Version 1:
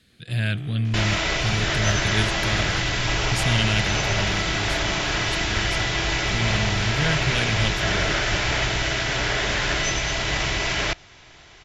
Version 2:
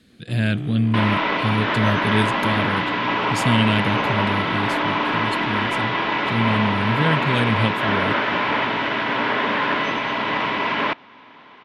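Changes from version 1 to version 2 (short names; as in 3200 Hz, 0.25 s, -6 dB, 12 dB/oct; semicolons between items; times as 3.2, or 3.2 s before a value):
second sound: add speaker cabinet 230–3300 Hz, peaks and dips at 250 Hz +5 dB, 350 Hz -8 dB, 700 Hz -6 dB, 1000 Hz +8 dB; master: add graphic EQ 250/500/1000 Hz +11/+4/+5 dB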